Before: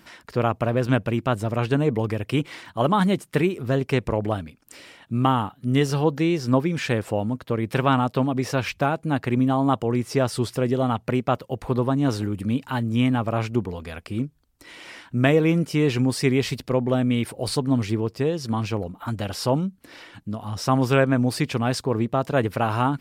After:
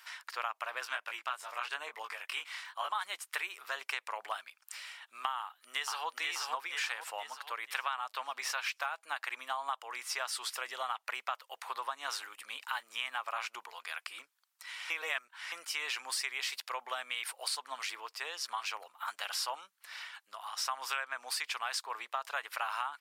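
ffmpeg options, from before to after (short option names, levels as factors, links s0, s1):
-filter_complex "[0:a]asplit=3[s0][s1][s2];[s0]afade=t=out:st=0.84:d=0.02[s3];[s1]flanger=delay=18:depth=7.4:speed=1,afade=t=in:st=0.84:d=0.02,afade=t=out:st=2.94:d=0.02[s4];[s2]afade=t=in:st=2.94:d=0.02[s5];[s3][s4][s5]amix=inputs=3:normalize=0,asplit=2[s6][s7];[s7]afade=t=in:st=5.39:d=0.01,afade=t=out:st=6.07:d=0.01,aecho=0:1:480|960|1440|1920|2400|2880:0.707946|0.318576|0.143359|0.0645116|0.0290302|0.0130636[s8];[s6][s8]amix=inputs=2:normalize=0,asplit=3[s9][s10][s11];[s9]atrim=end=14.902[s12];[s10]atrim=start=14.898:end=15.522,asetpts=PTS-STARTPTS,areverse[s13];[s11]atrim=start=15.518[s14];[s12][s13]acrossfade=d=0.004:c1=hsin:c2=hsin[s15];[s15][s14]acrossfade=d=0.004:c1=hsin:c2=hsin,highpass=f=1000:w=0.5412,highpass=f=1000:w=1.3066,acompressor=threshold=0.0251:ratio=6"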